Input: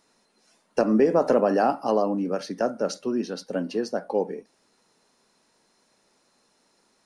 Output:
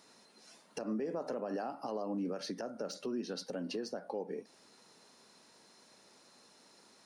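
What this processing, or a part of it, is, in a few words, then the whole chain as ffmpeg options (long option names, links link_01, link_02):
broadcast voice chain: -af "highpass=83,deesser=0.75,acompressor=threshold=-36dB:ratio=3,equalizer=frequency=4200:width_type=o:width=0.84:gain=3,alimiter=level_in=8dB:limit=-24dB:level=0:latency=1:release=169,volume=-8dB,volume=3dB"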